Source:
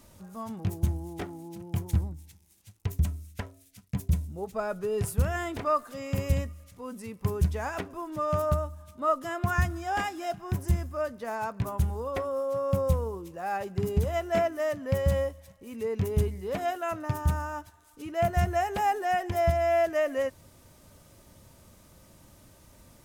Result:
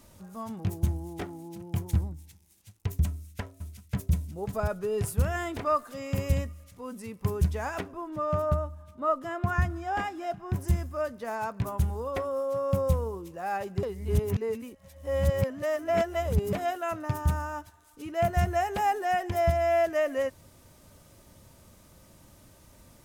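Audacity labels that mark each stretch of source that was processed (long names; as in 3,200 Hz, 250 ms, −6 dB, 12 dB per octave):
3.060000	4.130000	delay throw 540 ms, feedback 25%, level −5.5 dB
7.900000	10.560000	high-shelf EQ 3,400 Hz −10.5 dB
13.830000	16.530000	reverse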